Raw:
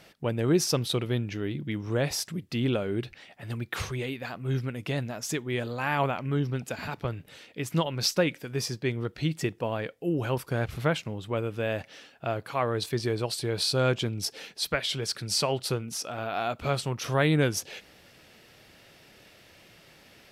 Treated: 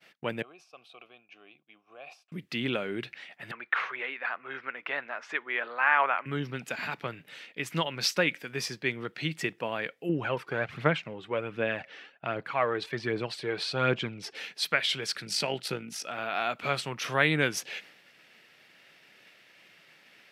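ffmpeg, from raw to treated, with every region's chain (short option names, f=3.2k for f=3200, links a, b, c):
-filter_complex "[0:a]asettb=1/sr,asplit=3[a][b][c];[a]atrim=end=0.424[d];[b]atrim=start=0.42:end=2.32,asetpts=PTS-STARTPTS,afade=t=in:d=0.004:c=qsin,afade=t=out:st=1.896:d=0.004:c=qsin,highshelf=f=4.6k:g=11,acompressor=threshold=-27dB:ratio=8:attack=3.2:release=140:knee=1:detection=peak,asplit=3[e][f][g];[e]bandpass=f=730:t=q:w=8,volume=0dB[h];[f]bandpass=f=1.09k:t=q:w=8,volume=-6dB[i];[g]bandpass=f=2.44k:t=q:w=8,volume=-9dB[j];[h][i][j]amix=inputs=3:normalize=0[k];[c]atrim=start=2.316[l];[d][k]acrossfade=d=0.004:c1=hsin:c2=qsin[m];[m][l]acrossfade=d=0.004:c1=qsin:c2=hsin,asettb=1/sr,asplit=3[n][o][p];[n]atrim=end=3.514[q];[o]atrim=start=3.51:end=6.26,asetpts=PTS-STARTPTS,afade=t=in:d=0.004:c=qsin,afade=t=out:st=2.746:d=0.004:c=qsin,highpass=530,lowpass=2.2k,equalizer=f=1.3k:t=o:w=1.4:g=6.5[r];[p]atrim=start=6.256[s];[q][r]acrossfade=d=0.004:c1=hsin:c2=qsin[t];[t][s]acrossfade=d=0.004:c1=qsin:c2=hsin,asettb=1/sr,asplit=3[u][v][w];[u]atrim=end=10.094[x];[v]atrim=start=10.09:end=14.35,asetpts=PTS-STARTPTS,afade=t=in:d=0.004:c=qsin,afade=t=out:st=4.256:d=0.004:c=qsin,aphaser=in_gain=1:out_gain=1:delay=2.8:decay=0.42:speed=1.3:type=triangular,aemphasis=mode=reproduction:type=75fm[y];[w]atrim=start=14.346[z];[x][y]acrossfade=d=0.004:c1=hsin:c2=qsin[aa];[aa][z]acrossfade=d=0.004:c1=qsin:c2=hsin,asettb=1/sr,asplit=3[ab][ac][ad];[ab]atrim=end=15.254[ae];[ac]atrim=start=15.25:end=16.08,asetpts=PTS-STARTPTS,afade=t=in:d=0.004:c=qsin,afade=t=out:st=0.826:d=0.004:c=qsin,equalizer=f=210:t=o:w=1.8:g=3.5,bandreject=f=1.1k:w=5.2,tremolo=f=52:d=0.462[af];[ad]atrim=start=16.076[ag];[ae][af]acrossfade=d=0.004:c1=hsin:c2=qsin[ah];[ah][ag]acrossfade=d=0.004:c1=qsin:c2=hsin,highpass=f=140:w=0.5412,highpass=f=140:w=1.3066,agate=range=-33dB:threshold=-50dB:ratio=3:detection=peak,equalizer=f=2.1k:w=0.7:g=11,volume=-5dB"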